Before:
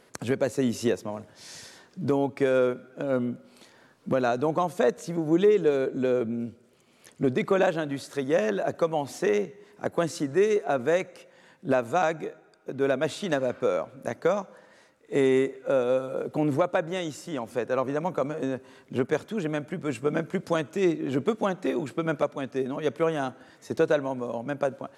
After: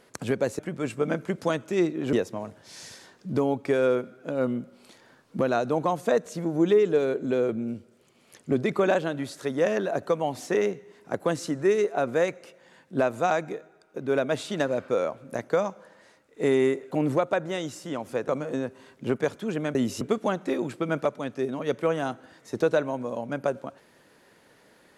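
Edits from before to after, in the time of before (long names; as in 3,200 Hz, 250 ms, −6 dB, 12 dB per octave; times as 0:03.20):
0:00.59–0:00.85: swap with 0:19.64–0:21.18
0:15.63–0:16.33: remove
0:17.70–0:18.17: remove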